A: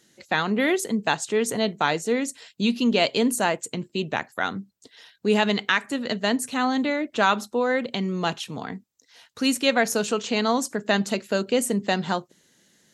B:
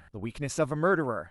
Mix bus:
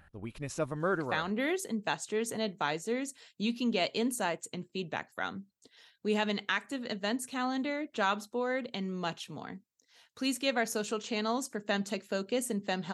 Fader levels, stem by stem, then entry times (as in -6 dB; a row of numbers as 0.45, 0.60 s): -9.5, -6.0 dB; 0.80, 0.00 s